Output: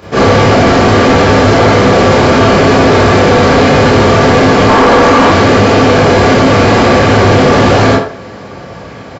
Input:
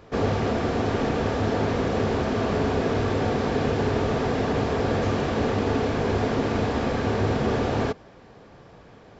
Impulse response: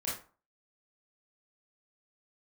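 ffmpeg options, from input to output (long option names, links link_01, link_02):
-filter_complex "[0:a]highpass=92,highshelf=frequency=4000:gain=4.5,asplit=2[link_01][link_02];[link_02]adelay=80,highpass=300,lowpass=3400,asoftclip=type=hard:threshold=-20dB,volume=-9dB[link_03];[link_01][link_03]amix=inputs=2:normalize=0[link_04];[1:a]atrim=start_sample=2205[link_05];[link_04][link_05]afir=irnorm=-1:irlink=0,asoftclip=type=tanh:threshold=-10dB,asettb=1/sr,asplit=3[link_06][link_07][link_08];[link_06]atrim=end=4.694[link_09];[link_07]atrim=start=4.69:end=5.32,asetpts=PTS-STARTPTS,afade=type=in:duration=0.004:curve=qsin,afade=type=out:start_time=0.626:duration=0.004:curve=qsin,equalizer=frequency=125:width_type=o:width=1:gain=-11,equalizer=frequency=250:width_type=o:width=1:gain=10,equalizer=frequency=1000:width_type=o:width=1:gain=10[link_10];[link_08]atrim=start=5.316[link_11];[link_09][link_10]acrossfade=duration=0.004:curve1=hsin:curve2=qsin[link_12];[link_12][link_11]acrossfade=duration=0.004:curve1=qsin:curve2=hsin,apsyclip=20dB,volume=-2dB"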